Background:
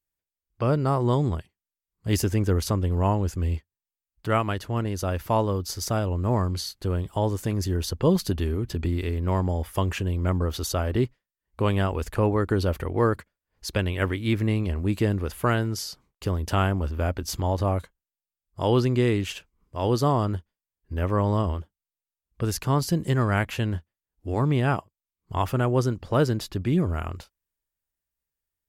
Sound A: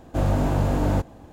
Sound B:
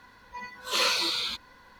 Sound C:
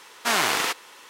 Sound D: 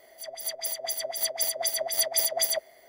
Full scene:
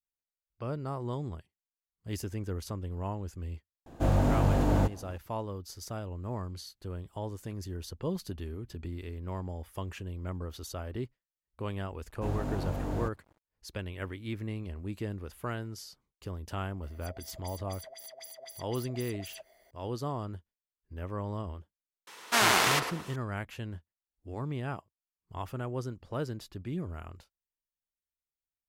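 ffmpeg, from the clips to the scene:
-filter_complex "[1:a]asplit=2[s0][s1];[0:a]volume=0.224[s2];[s1]aeval=exprs='sgn(val(0))*max(abs(val(0))-0.0075,0)':c=same[s3];[4:a]acompressor=threshold=0.0178:ratio=6:attack=3.2:release=140:knee=1:detection=peak[s4];[3:a]asplit=2[s5][s6];[s6]adelay=111,lowpass=f=1300:p=1,volume=0.631,asplit=2[s7][s8];[s8]adelay=111,lowpass=f=1300:p=1,volume=0.41,asplit=2[s9][s10];[s10]adelay=111,lowpass=f=1300:p=1,volume=0.41,asplit=2[s11][s12];[s12]adelay=111,lowpass=f=1300:p=1,volume=0.41,asplit=2[s13][s14];[s14]adelay=111,lowpass=f=1300:p=1,volume=0.41[s15];[s5][s7][s9][s11][s13][s15]amix=inputs=6:normalize=0[s16];[s0]atrim=end=1.32,asetpts=PTS-STARTPTS,volume=0.668,afade=t=in:d=0.004:c=hsin,afade=t=out:st=1.316:d=0.004:c=hsin,adelay=3860[s17];[s3]atrim=end=1.32,asetpts=PTS-STARTPTS,volume=0.266,afade=t=in:d=0.004:c=hsin,afade=t=out:st=1.316:d=0.004:c=hsin,adelay=12070[s18];[s4]atrim=end=2.88,asetpts=PTS-STARTPTS,volume=0.355,afade=t=in:d=0.004:c=hsin,afade=t=out:st=2.876:d=0.004:c=hsin,adelay=16830[s19];[s16]atrim=end=1.09,asetpts=PTS-STARTPTS,volume=0.794,afade=t=in:d=0.004:c=hsin,afade=t=out:st=1.086:d=0.004:c=hsin,adelay=22070[s20];[s2][s17][s18][s19][s20]amix=inputs=5:normalize=0"

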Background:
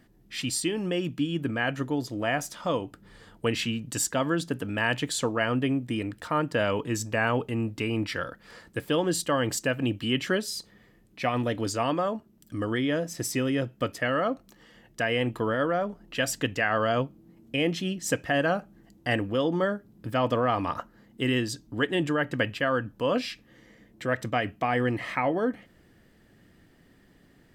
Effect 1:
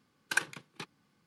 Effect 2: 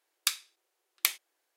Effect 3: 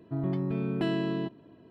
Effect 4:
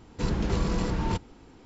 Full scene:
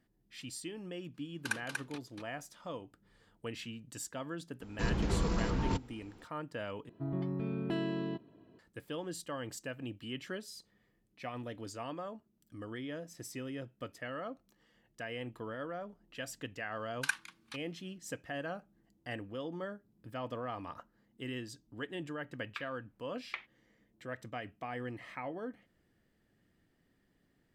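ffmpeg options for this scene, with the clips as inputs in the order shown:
-filter_complex "[1:a]asplit=2[s0][s1];[0:a]volume=0.178[s2];[s0]aecho=1:1:239:0.631[s3];[3:a]asoftclip=type=hard:threshold=0.112[s4];[s1]highpass=f=950:w=0.5412,highpass=f=950:w=1.3066[s5];[2:a]lowpass=f=2400:w=0.5412,lowpass=f=2400:w=1.3066[s6];[s2]asplit=2[s7][s8];[s7]atrim=end=6.894[s9];[s4]atrim=end=1.7,asetpts=PTS-STARTPTS,volume=0.501[s10];[s8]atrim=start=8.586[s11];[s3]atrim=end=1.26,asetpts=PTS-STARTPTS,volume=0.473,afade=t=in:d=0.004:c=hsin,afade=t=out:st=1.256:d=0.004:c=hsin,adelay=1140[s12];[4:a]atrim=end=1.65,asetpts=PTS-STARTPTS,volume=0.562,afade=t=in:d=0.004:c=hsin,afade=t=out:st=1.646:d=0.004:c=hsin,adelay=4600[s13];[s5]atrim=end=1.26,asetpts=PTS-STARTPTS,volume=0.668,afade=t=in:d=0.004:c=hsin,afade=t=out:st=1.256:d=0.004:c=hsin,adelay=16720[s14];[s6]atrim=end=1.56,asetpts=PTS-STARTPTS,volume=0.531,afade=t=in:d=0.004:c=hsin,afade=t=out:st=1.556:d=0.004:c=hsin,adelay=22290[s15];[s9][s10]acrossfade=d=0.004:c1=hsin:c2=hsin[s16];[s16][s11]acrossfade=d=0.004:c1=hsin:c2=hsin[s17];[s17][s12][s13][s14][s15]amix=inputs=5:normalize=0"

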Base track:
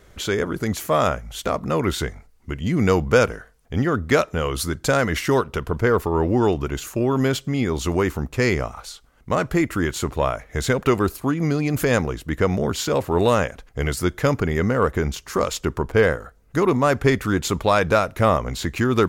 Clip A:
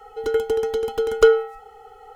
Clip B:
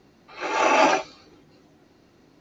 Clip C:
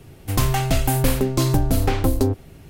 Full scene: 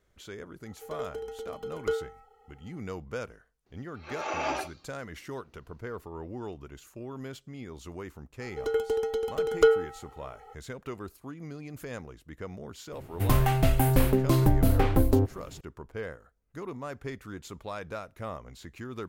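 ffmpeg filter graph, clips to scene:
-filter_complex "[1:a]asplit=2[s0][s1];[0:a]volume=0.1[s2];[s0]asplit=2[s3][s4];[s4]adelay=35,volume=0.211[s5];[s3][s5]amix=inputs=2:normalize=0[s6];[3:a]equalizer=f=6200:w=0.66:g=-10[s7];[s6]atrim=end=2.15,asetpts=PTS-STARTPTS,volume=0.158,afade=t=in:d=0.004:c=hsin,afade=t=out:st=2.146:d=0.004:c=hsin,adelay=650[s8];[2:a]atrim=end=2.4,asetpts=PTS-STARTPTS,volume=0.224,afade=t=in:d=0.004:c=hsin,afade=t=out:st=2.396:d=0.004:c=hsin,adelay=3660[s9];[s1]atrim=end=2.15,asetpts=PTS-STARTPTS,volume=0.473,afade=t=in:d=0.004:c=hsin,afade=t=out:st=2.146:d=0.004:c=hsin,adelay=8400[s10];[s7]atrim=end=2.69,asetpts=PTS-STARTPTS,volume=0.708,afade=t=in:d=0.004:c=hsin,afade=t=out:st=2.686:d=0.004:c=hsin,adelay=12920[s11];[s2][s8][s9][s10][s11]amix=inputs=5:normalize=0"

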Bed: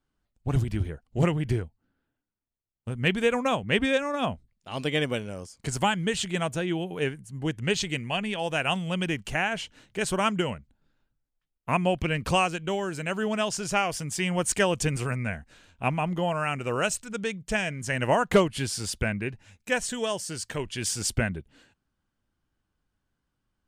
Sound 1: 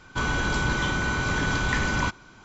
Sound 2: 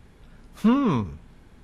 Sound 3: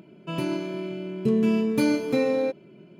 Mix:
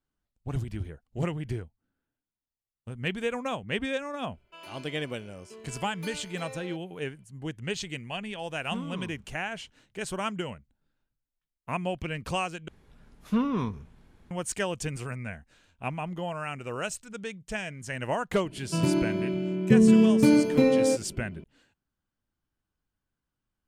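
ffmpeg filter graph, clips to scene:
-filter_complex "[3:a]asplit=2[s0][s1];[2:a]asplit=2[s2][s3];[0:a]volume=0.473[s4];[s0]highpass=840[s5];[s1]lowshelf=f=220:g=11[s6];[s4]asplit=2[s7][s8];[s7]atrim=end=12.684[s9];[s3]atrim=end=1.63,asetpts=PTS-STARTPTS,volume=0.473[s10];[s8]atrim=start=14.306[s11];[s5]atrim=end=2.99,asetpts=PTS-STARTPTS,volume=0.316,afade=t=in:d=0.004:c=hsin,afade=t=out:st=2.986:d=0.004:c=hsin,adelay=187425S[s12];[s2]atrim=end=1.63,asetpts=PTS-STARTPTS,volume=0.133,afade=t=in:d=0.004:c=hsin,afade=t=out:st=1.626:d=0.004:c=hsin,adelay=8070[s13];[s6]atrim=end=2.99,asetpts=PTS-STARTPTS,volume=0.891,afade=t=in:d=0.004:c=hsin,afade=t=out:st=2.986:d=0.004:c=hsin,adelay=18450[s14];[s9][s10]acrossfade=d=0.004:c1=hsin:c2=hsin[s15];[s15][s11]acrossfade=d=0.004:c1=hsin:c2=hsin[s16];[s16][s12][s13][s14]amix=inputs=4:normalize=0"

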